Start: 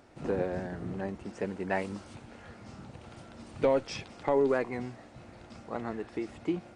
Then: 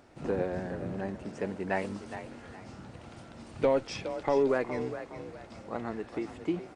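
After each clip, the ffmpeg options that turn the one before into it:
-filter_complex "[0:a]asplit=5[a][b][c][d][e];[b]adelay=414,afreqshift=37,volume=-11dB[f];[c]adelay=828,afreqshift=74,volume=-20.4dB[g];[d]adelay=1242,afreqshift=111,volume=-29.7dB[h];[e]adelay=1656,afreqshift=148,volume=-39.1dB[i];[a][f][g][h][i]amix=inputs=5:normalize=0"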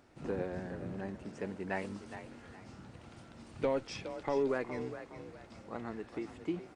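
-af "equalizer=f=640:w=1.5:g=-3,volume=-4.5dB"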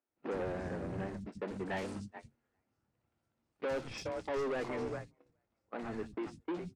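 -filter_complex "[0:a]agate=range=-35dB:threshold=-42dB:ratio=16:detection=peak,asoftclip=type=tanh:threshold=-38.5dB,acrossover=split=200|3700[a][b][c];[c]adelay=60[d];[a]adelay=90[e];[e][b][d]amix=inputs=3:normalize=0,volume=6.5dB"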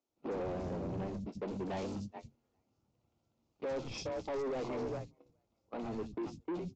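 -af "equalizer=f=1.7k:t=o:w=0.67:g=-14.5,aresample=16000,asoftclip=type=tanh:threshold=-37dB,aresample=44100,volume=4dB"

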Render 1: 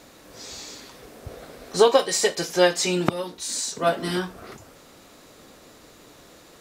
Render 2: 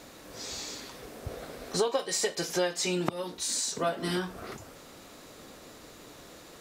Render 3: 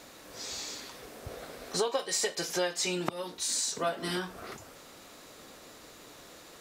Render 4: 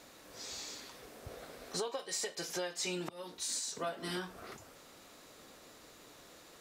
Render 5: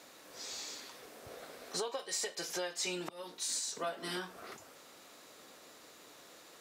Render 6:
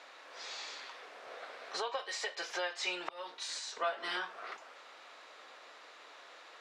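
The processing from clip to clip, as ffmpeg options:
-af "acompressor=threshold=-28dB:ratio=3"
-af "lowshelf=f=440:g=-5.5"
-af "alimiter=limit=-20.5dB:level=0:latency=1:release=255,volume=-5.5dB"
-af "highpass=f=280:p=1,volume=1dB"
-af "highpass=720,lowpass=3.1k,volume=6.5dB"

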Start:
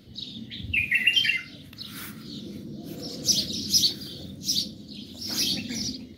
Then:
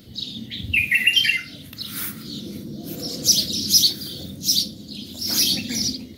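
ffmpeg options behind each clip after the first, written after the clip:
-filter_complex "[0:a]highshelf=f=7.4k:g=10.5,asplit=2[a][b];[b]alimiter=limit=-14dB:level=0:latency=1:release=346,volume=-3dB[c];[a][c]amix=inputs=2:normalize=0"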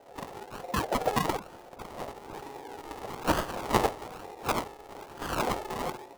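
-af "aeval=exprs='val(0)+0.00447*(sin(2*PI*50*n/s)+sin(2*PI*2*50*n/s)/2+sin(2*PI*3*50*n/s)/3+sin(2*PI*4*50*n/s)/4+sin(2*PI*5*50*n/s)/5)':c=same,acrusher=samples=39:mix=1:aa=0.000001:lfo=1:lforange=23.4:lforate=1.1,aeval=exprs='val(0)*sin(2*PI*620*n/s)':c=same,volume=-6.5dB"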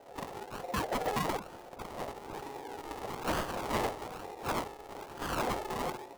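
-af "asoftclip=type=tanh:threshold=-26dB"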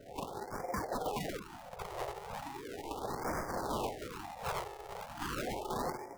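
-filter_complex "[0:a]acrossover=split=210|1400[a][b][c];[a]acompressor=mode=upward:threshold=-52dB:ratio=2.5[d];[d][b][c]amix=inputs=3:normalize=0,alimiter=level_in=2.5dB:limit=-24dB:level=0:latency=1:release=185,volume=-2.5dB,afftfilt=real='re*(1-between(b*sr/1024,230*pow(3400/230,0.5+0.5*sin(2*PI*0.37*pts/sr))/1.41,230*pow(3400/230,0.5+0.5*sin(2*PI*0.37*pts/sr))*1.41))':imag='im*(1-between(b*sr/1024,230*pow(3400/230,0.5+0.5*sin(2*PI*0.37*pts/sr))/1.41,230*pow(3400/230,0.5+0.5*sin(2*PI*0.37*pts/sr))*1.41))':win_size=1024:overlap=0.75,volume=1dB"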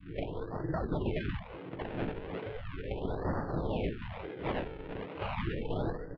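-filter_complex "[0:a]adynamicequalizer=threshold=0.00282:dfrequency=1400:dqfactor=0.91:tfrequency=1400:tqfactor=0.91:attack=5:release=100:ratio=0.375:range=2.5:mode=cutabove:tftype=bell,asplit=2[a][b];[b]adelay=18,volume=-13dB[c];[a][c]amix=inputs=2:normalize=0,highpass=f=220:t=q:w=0.5412,highpass=f=220:t=q:w=1.307,lowpass=f=3.5k:t=q:w=0.5176,lowpass=f=3.5k:t=q:w=0.7071,lowpass=f=3.5k:t=q:w=1.932,afreqshift=-390,volume=6dB"

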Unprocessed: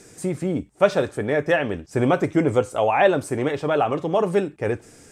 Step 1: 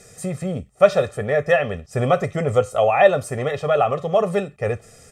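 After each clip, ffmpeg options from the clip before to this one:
-af "aecho=1:1:1.6:0.91,volume=-1dB"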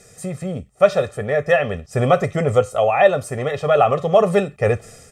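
-af "dynaudnorm=f=350:g=3:m=11.5dB,volume=-1dB"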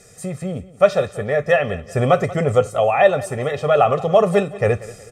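-af "aecho=1:1:185|370|555:0.119|0.0475|0.019"

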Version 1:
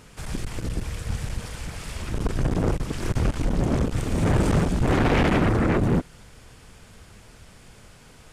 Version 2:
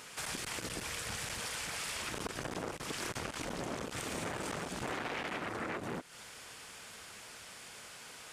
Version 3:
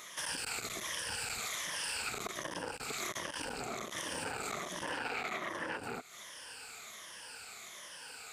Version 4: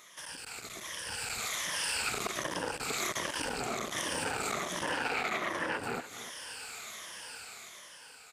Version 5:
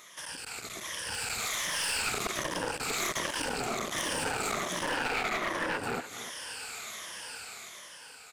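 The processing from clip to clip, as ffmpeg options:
-af "highpass=f=1.1k:p=1,acompressor=threshold=-40dB:ratio=8,volume=4.5dB"
-af "afftfilt=real='re*pow(10,12/40*sin(2*PI*(1.2*log(max(b,1)*sr/1024/100)/log(2)-(-1.3)*(pts-256)/sr)))':imag='im*pow(10,12/40*sin(2*PI*(1.2*log(max(b,1)*sr/1024/100)/log(2)-(-1.3)*(pts-256)/sr)))':win_size=1024:overlap=0.75,lowshelf=f=360:g=-9.5"
-af "dynaudnorm=f=490:g=5:m=11dB,aecho=1:1:294:0.2,volume=-6dB"
-af "aeval=exprs='clip(val(0),-1,0.0251)':c=same,volume=3dB"

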